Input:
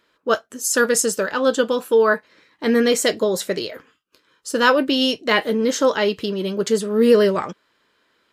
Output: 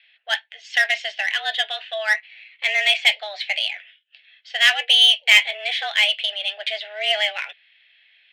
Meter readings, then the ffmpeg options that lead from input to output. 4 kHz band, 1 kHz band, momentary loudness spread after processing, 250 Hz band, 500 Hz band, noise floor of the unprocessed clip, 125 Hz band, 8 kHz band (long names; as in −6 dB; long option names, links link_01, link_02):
+9.5 dB, −7.0 dB, 13 LU, below −40 dB, −16.0 dB, −66 dBFS, below −40 dB, −10.5 dB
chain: -af "highpass=frequency=370:width_type=q:width=0.5412,highpass=frequency=370:width_type=q:width=1.307,lowpass=frequency=2800:width_type=q:width=0.5176,lowpass=frequency=2800:width_type=q:width=0.7071,lowpass=frequency=2800:width_type=q:width=1.932,afreqshift=210,aexciter=amount=15.3:drive=9.6:freq=2000,volume=-13dB"